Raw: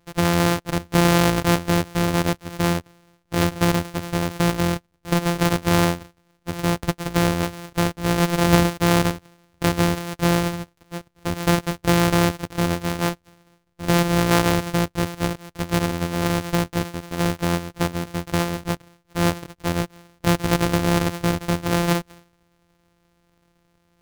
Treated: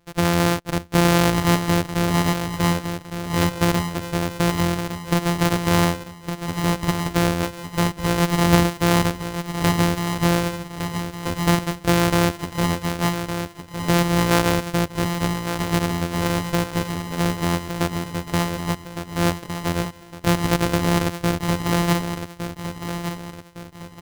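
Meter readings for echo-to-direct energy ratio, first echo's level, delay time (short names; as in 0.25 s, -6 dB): -7.5 dB, -8.5 dB, 1.16 s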